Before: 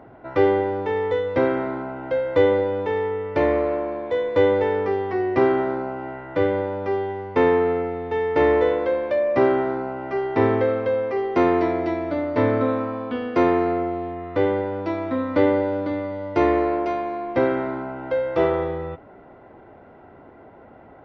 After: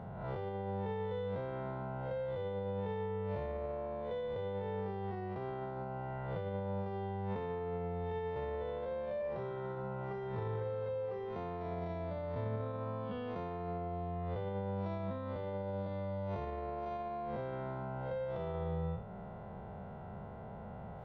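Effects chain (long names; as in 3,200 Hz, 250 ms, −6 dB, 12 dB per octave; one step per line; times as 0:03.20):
spectrum smeared in time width 130 ms
0:09.18–0:11.36: double-tracking delay 25 ms −4 dB
brickwall limiter −19 dBFS, peak gain reduction 10.5 dB
downward compressor 3 to 1, threshold −40 dBFS, peak gain reduction 12.5 dB
drawn EQ curve 120 Hz 0 dB, 200 Hz +3 dB, 290 Hz −24 dB, 430 Hz −10 dB, 910 Hz −8 dB, 2,100 Hz −15 dB, 3,500 Hz −7 dB, 5,700 Hz −13 dB
level +8.5 dB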